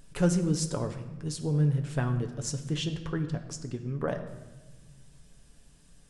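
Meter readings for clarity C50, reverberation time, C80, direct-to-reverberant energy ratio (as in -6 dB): 9.5 dB, 1.2 s, 11.5 dB, 5.0 dB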